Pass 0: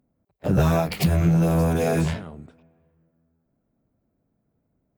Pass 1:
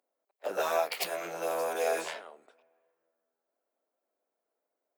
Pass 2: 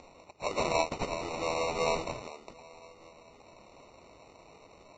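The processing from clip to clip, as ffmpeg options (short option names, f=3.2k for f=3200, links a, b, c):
-af "highpass=f=480:w=0.5412,highpass=f=480:w=1.3066,volume=-3.5dB"
-af "acrusher=samples=27:mix=1:aa=0.000001,acompressor=mode=upward:threshold=-31dB:ratio=2.5" -ar 16000 -c:a libvorbis -b:a 32k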